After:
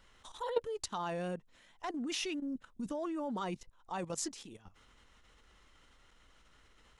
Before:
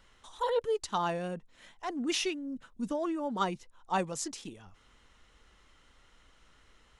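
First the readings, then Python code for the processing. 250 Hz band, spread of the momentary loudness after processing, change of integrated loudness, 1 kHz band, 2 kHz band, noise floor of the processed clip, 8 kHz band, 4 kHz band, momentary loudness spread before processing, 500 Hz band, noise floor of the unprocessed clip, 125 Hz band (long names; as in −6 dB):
−3.5 dB, 10 LU, −5.0 dB, −7.0 dB, −5.5 dB, −65 dBFS, −2.5 dB, −5.0 dB, 13 LU, −5.5 dB, −64 dBFS, −3.5 dB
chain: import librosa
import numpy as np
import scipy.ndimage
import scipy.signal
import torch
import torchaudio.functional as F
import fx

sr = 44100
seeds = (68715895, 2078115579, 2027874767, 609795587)

y = fx.level_steps(x, sr, step_db=13)
y = y * librosa.db_to_amplitude(2.0)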